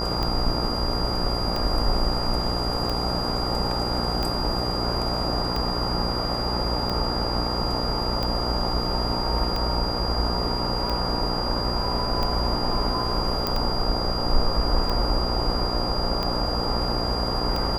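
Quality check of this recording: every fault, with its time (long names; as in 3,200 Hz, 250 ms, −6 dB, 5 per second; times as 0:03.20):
mains buzz 60 Hz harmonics 23 −29 dBFS
scratch tick 45 rpm −14 dBFS
whistle 4,800 Hz −29 dBFS
0:13.47: click −9 dBFS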